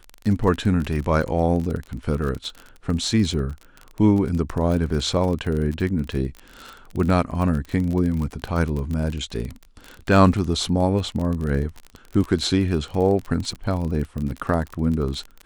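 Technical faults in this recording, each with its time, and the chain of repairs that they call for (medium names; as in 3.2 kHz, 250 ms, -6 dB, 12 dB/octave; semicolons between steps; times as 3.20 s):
crackle 33 per s -26 dBFS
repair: de-click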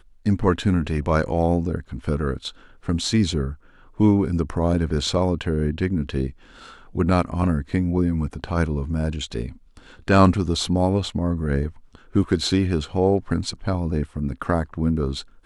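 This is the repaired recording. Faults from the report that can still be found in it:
nothing left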